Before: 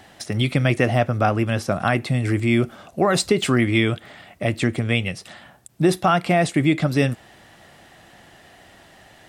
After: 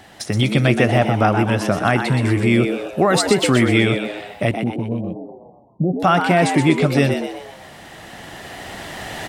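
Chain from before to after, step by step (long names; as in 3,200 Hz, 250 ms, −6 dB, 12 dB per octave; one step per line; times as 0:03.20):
camcorder AGC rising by 7.5 dB per second
0:04.51–0:06.00: Chebyshev low-pass with heavy ripple 770 Hz, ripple 9 dB
echo with shifted repeats 124 ms, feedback 46%, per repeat +98 Hz, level −7 dB
level +2.5 dB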